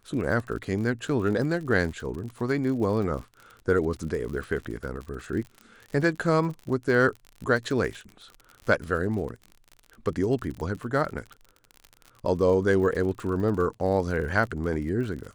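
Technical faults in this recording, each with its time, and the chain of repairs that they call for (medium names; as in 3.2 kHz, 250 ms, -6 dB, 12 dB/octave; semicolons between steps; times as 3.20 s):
crackle 54 per s -34 dBFS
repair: de-click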